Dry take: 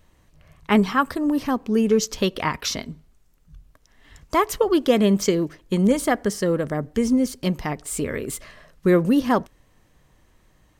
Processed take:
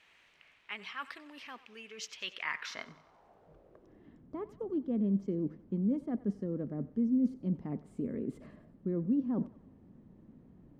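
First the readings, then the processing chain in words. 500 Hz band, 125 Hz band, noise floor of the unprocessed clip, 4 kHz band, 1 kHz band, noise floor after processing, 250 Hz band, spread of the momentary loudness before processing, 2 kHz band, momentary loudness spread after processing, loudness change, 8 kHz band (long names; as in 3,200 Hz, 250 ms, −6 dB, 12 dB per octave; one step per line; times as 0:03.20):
−19.5 dB, −11.5 dB, −60 dBFS, −15.5 dB, −22.5 dB, −64 dBFS, −12.0 dB, 9 LU, −13.0 dB, 16 LU, −13.5 dB, below −20 dB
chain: reversed playback
downward compressor 4 to 1, threshold −35 dBFS, peak gain reduction 19 dB
reversed playback
background noise brown −50 dBFS
feedback echo with a high-pass in the loop 93 ms, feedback 54%, high-pass 420 Hz, level −17 dB
band-pass filter sweep 2,500 Hz → 230 Hz, 0:02.33–0:04.25
level +7 dB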